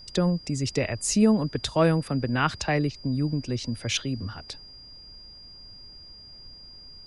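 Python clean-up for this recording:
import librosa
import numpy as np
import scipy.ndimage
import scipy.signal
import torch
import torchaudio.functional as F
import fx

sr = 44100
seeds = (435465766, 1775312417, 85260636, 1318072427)

y = fx.notch(x, sr, hz=4800.0, q=30.0)
y = fx.noise_reduce(y, sr, print_start_s=5.89, print_end_s=6.39, reduce_db=24.0)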